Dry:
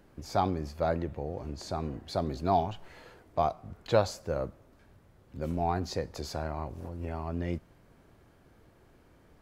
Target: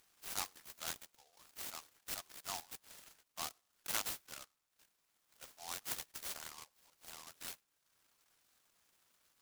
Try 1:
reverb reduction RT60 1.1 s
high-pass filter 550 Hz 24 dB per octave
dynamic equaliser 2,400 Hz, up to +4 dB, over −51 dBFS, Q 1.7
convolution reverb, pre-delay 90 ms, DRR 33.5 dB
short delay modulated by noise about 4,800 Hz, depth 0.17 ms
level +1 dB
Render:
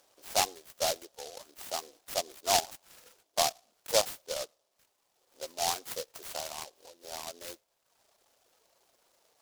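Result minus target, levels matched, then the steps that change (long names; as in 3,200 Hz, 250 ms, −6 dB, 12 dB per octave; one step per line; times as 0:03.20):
500 Hz band +11.5 dB
change: high-pass filter 1,400 Hz 24 dB per octave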